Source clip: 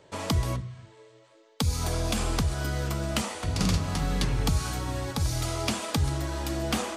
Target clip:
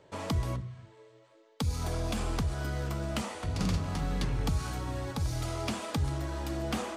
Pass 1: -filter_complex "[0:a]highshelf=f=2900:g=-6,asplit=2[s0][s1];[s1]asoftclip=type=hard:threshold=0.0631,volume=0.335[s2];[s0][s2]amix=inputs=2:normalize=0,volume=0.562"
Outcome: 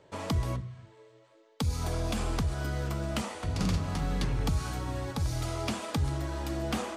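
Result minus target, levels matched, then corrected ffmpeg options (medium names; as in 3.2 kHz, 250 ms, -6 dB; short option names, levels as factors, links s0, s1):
hard clipper: distortion -8 dB
-filter_complex "[0:a]highshelf=f=2900:g=-6,asplit=2[s0][s1];[s1]asoftclip=type=hard:threshold=0.0224,volume=0.335[s2];[s0][s2]amix=inputs=2:normalize=0,volume=0.562"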